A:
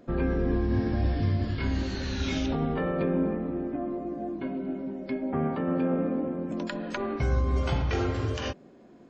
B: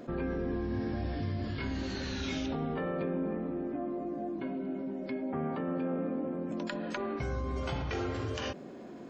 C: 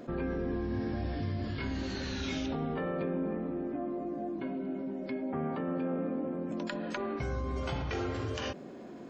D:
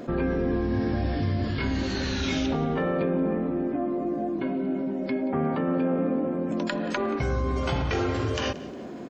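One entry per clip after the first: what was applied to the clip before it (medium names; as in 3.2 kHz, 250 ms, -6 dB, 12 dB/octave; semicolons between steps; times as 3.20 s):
bass shelf 71 Hz -11 dB; level flattener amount 50%; trim -7 dB
no audible change
feedback delay 179 ms, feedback 34%, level -18.5 dB; trim +8 dB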